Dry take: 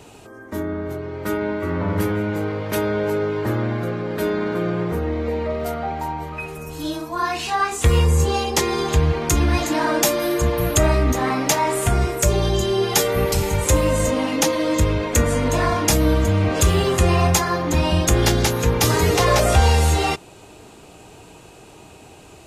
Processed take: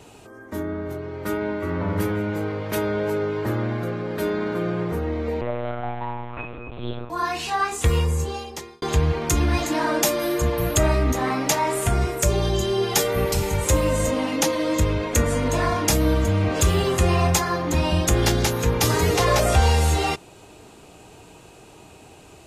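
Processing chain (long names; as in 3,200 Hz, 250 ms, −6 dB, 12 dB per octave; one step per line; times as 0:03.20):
pitch vibrato 3 Hz 9.6 cents
0:05.41–0:07.10: one-pitch LPC vocoder at 8 kHz 120 Hz
0:07.76–0:08.82: fade out linear
level −2.5 dB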